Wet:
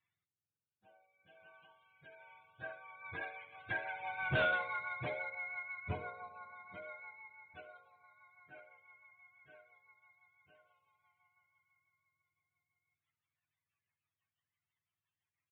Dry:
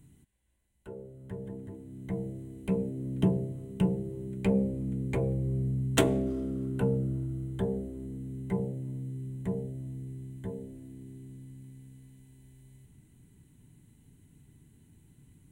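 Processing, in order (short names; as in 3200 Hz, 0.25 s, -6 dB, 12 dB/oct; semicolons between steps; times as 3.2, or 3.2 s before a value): spectrum mirrored in octaves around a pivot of 540 Hz; Doppler pass-by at 4.37, 9 m/s, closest 1.5 m; rotary speaker horn 1.1 Hz, later 6 Hz, at 2.09; soft clip -37.5 dBFS, distortion -5 dB; on a send: flutter echo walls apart 11.8 m, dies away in 0.27 s; on the sum: downsampling 8000 Hz; gain +8.5 dB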